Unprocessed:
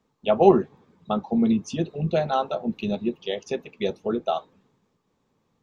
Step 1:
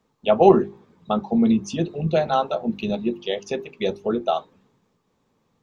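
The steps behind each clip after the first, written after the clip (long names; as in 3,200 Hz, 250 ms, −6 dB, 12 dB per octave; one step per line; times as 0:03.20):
mains-hum notches 50/100/150/200/250/300/350/400 Hz
level +3 dB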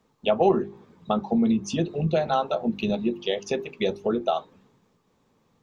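downward compressor 2 to 1, threshold −25 dBFS, peak gain reduction 10 dB
level +2 dB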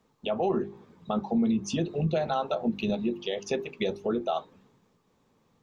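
brickwall limiter −17 dBFS, peak gain reduction 8 dB
level −1.5 dB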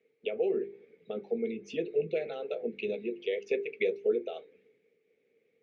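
pair of resonant band-passes 1,000 Hz, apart 2.3 octaves
level +6.5 dB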